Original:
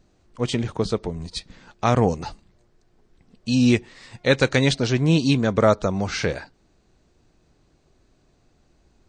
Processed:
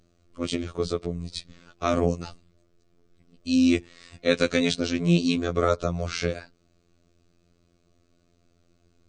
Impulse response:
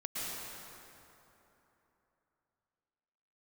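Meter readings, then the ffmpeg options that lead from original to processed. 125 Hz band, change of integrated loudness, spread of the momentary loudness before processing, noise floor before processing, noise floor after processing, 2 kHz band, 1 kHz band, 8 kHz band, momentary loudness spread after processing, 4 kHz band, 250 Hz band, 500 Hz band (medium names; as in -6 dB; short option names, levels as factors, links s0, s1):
-7.0 dB, -4.0 dB, 14 LU, -63 dBFS, -66 dBFS, -5.0 dB, -6.0 dB, -3.5 dB, 13 LU, -3.5 dB, -2.5 dB, -4.0 dB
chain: -af "superequalizer=9b=0.316:11b=0.631,afftfilt=real='hypot(re,im)*cos(PI*b)':imag='0':win_size=2048:overlap=0.75"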